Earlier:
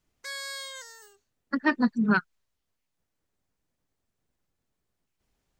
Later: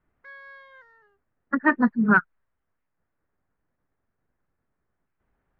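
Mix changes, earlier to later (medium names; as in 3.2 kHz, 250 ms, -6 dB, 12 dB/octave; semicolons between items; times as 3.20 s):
speech +10.5 dB; master: add four-pole ladder low-pass 2 kHz, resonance 35%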